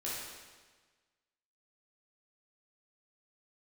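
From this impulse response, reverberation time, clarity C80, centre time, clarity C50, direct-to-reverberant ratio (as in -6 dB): 1.4 s, 1.5 dB, 94 ms, -1.5 dB, -8.0 dB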